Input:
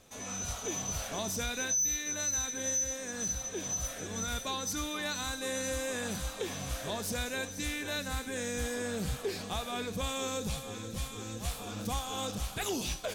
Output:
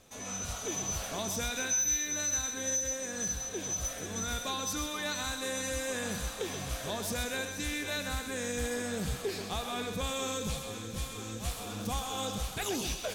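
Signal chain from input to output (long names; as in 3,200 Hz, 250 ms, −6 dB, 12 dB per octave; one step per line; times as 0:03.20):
feedback echo with a high-pass in the loop 129 ms, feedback 43%, high-pass 420 Hz, level −7 dB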